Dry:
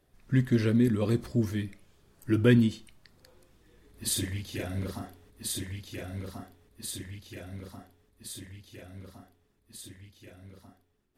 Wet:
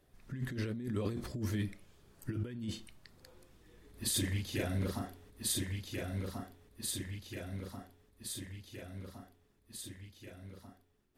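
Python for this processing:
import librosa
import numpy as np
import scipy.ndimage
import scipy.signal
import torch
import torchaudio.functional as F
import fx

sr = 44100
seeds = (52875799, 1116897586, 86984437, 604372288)

y = fx.over_compress(x, sr, threshold_db=-31.0, ratio=-1.0)
y = y * librosa.db_to_amplitude(-4.5)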